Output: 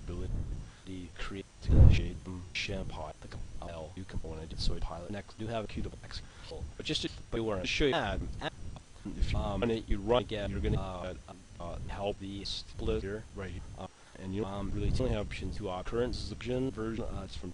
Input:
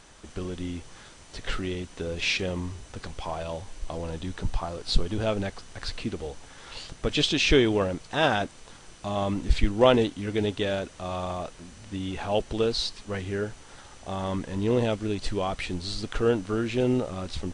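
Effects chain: slices played last to first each 283 ms, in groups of 2; wind noise 87 Hz -26 dBFS; wow and flutter 89 cents; trim -9 dB

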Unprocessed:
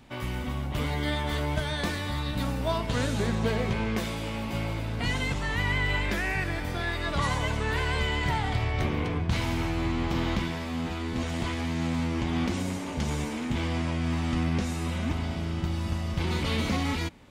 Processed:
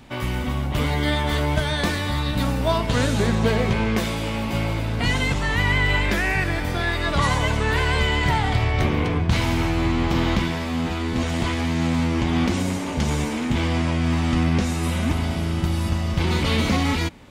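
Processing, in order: 14.83–15.89 s: peaking EQ 11 kHz +9.5 dB 0.67 oct; trim +7 dB

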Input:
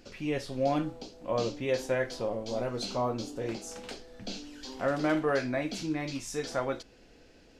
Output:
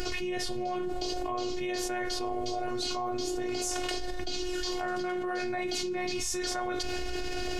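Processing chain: flange 1.4 Hz, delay 0.6 ms, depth 1.2 ms, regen +76%; robot voice 361 Hz; level flattener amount 100%

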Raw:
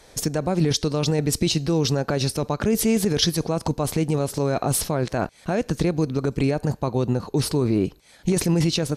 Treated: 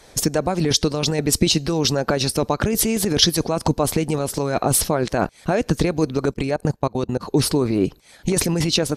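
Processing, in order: 6.31–7.21 s: level held to a coarse grid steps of 23 dB; harmonic-percussive split percussive +8 dB; trim -2 dB

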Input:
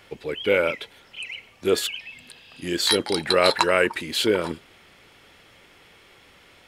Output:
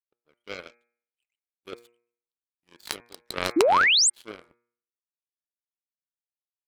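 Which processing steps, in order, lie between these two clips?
power-law waveshaper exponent 3; de-hum 118.7 Hz, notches 21; painted sound rise, 3.56–4.10 s, 290–9100 Hz -20 dBFS; trim +1 dB

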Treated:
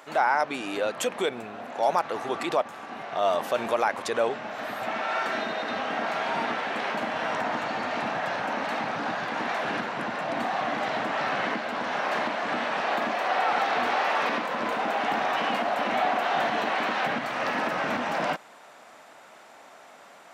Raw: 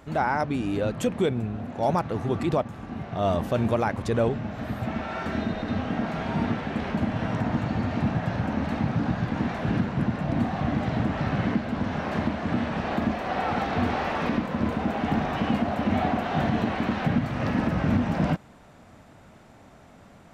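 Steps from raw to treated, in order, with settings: high-pass 630 Hz 12 dB/octave; in parallel at -1 dB: peak limiter -25 dBFS, peak gain reduction 11 dB; on the sum: trim +1 dB

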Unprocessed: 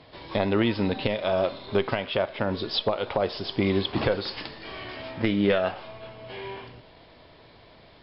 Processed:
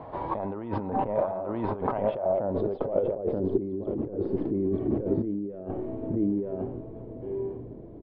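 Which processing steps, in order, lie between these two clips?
0.90–1.56 s: low-pass 1.8 kHz 12 dB/octave; delay 929 ms -5.5 dB; compressor with a negative ratio -33 dBFS, ratio -1; low-pass sweep 920 Hz -> 350 Hz, 1.85–3.70 s; trim +1.5 dB

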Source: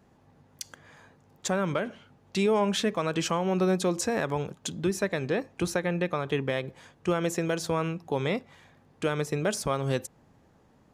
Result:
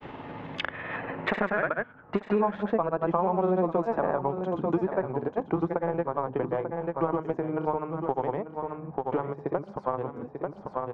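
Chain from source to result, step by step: Doppler pass-by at 3.46 s, 21 m/s, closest 30 m; tone controls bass -3 dB, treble -9 dB; hum notches 50/100/150/200/250 Hz; in parallel at -8 dB: small samples zeroed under -31 dBFS; on the sum: granulator, grains 20 per s, spray 100 ms, pitch spread up and down by 0 st; low-pass sweep 3.1 kHz -> 920 Hz, 0.93–2.53 s; on a send: delay 891 ms -13 dB; on the sum: three bands compressed up and down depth 100%; trim +1.5 dB

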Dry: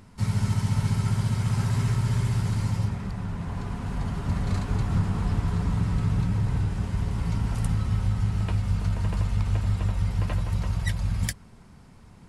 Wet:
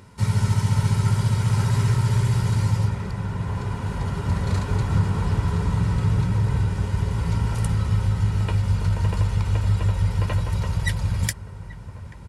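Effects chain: high-pass 65 Hz; comb 2.1 ms, depth 40%; on a send: feedback echo behind a low-pass 834 ms, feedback 65%, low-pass 1.9 kHz, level -16 dB; on the sum: trim +4 dB

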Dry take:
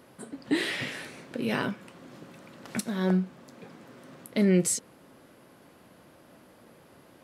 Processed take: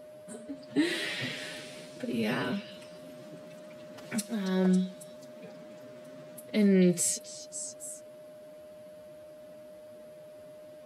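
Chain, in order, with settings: time stretch by phase-locked vocoder 1.5×; whistle 610 Hz -44 dBFS; peaking EQ 1.1 kHz -3.5 dB 1.6 oct; repeats whose band climbs or falls 275 ms, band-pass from 4 kHz, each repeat 0.7 oct, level -5.5 dB; trim -1 dB

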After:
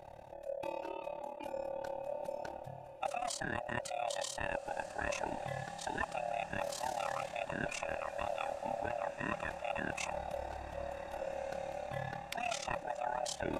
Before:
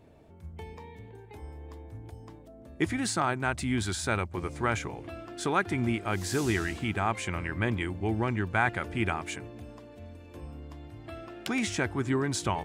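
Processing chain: split-band scrambler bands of 500 Hz; reverse; compression 6:1, threshold -40 dBFS, peak gain reduction 18 dB; reverse; AM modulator 39 Hz, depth 75%; tape speed -7%; echo that smears into a reverb 1600 ms, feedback 55%, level -13.5 dB; trim +7.5 dB

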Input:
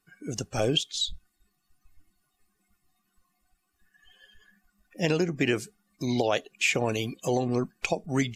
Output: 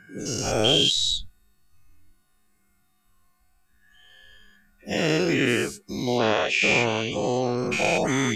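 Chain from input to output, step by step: every event in the spectrogram widened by 240 ms; 6.18–7.58 s: low-pass 6 kHz 24 dB/octave; trim -2.5 dB

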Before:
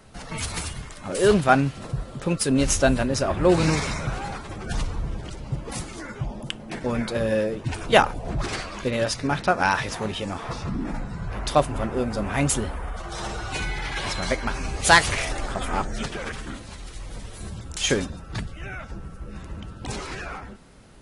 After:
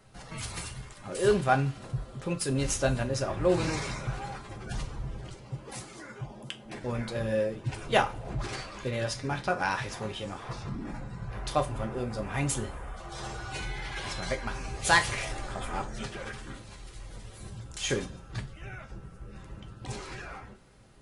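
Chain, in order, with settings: 5.34–6.65 s: high-pass 180 Hz 6 dB/octave; two-slope reverb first 0.24 s, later 1.7 s, from -27 dB, DRR 5 dB; trim -8.5 dB

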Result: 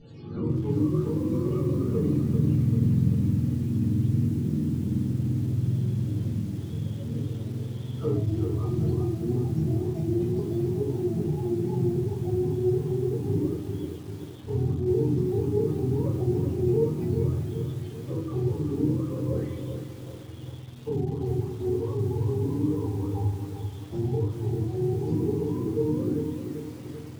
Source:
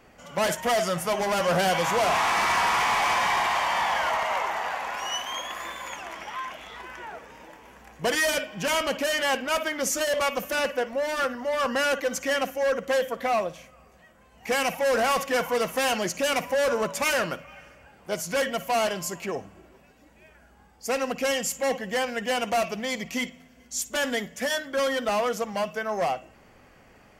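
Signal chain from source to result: spectrum inverted on a logarithmic axis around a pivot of 450 Hz; low-pass 5.6 kHz 12 dB/octave; high-order bell 1 kHz -9.5 dB; compression 2.5:1, threshold -39 dBFS, peak gain reduction 15 dB; simulated room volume 65 m³, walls mixed, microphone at 1.6 m; bit-crushed delay 391 ms, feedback 55%, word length 8-bit, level -7 dB; trim +1.5 dB

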